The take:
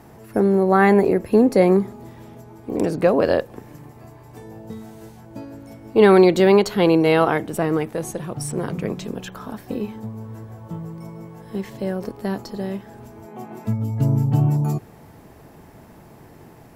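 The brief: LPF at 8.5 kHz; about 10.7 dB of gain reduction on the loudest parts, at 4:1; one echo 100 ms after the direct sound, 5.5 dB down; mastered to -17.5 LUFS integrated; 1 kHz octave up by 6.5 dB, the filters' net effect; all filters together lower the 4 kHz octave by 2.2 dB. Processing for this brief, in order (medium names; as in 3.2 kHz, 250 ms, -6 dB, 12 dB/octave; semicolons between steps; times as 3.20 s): low-pass 8.5 kHz; peaking EQ 1 kHz +9 dB; peaking EQ 4 kHz -3.5 dB; compression 4:1, threshold -19 dBFS; delay 100 ms -5.5 dB; trim +7 dB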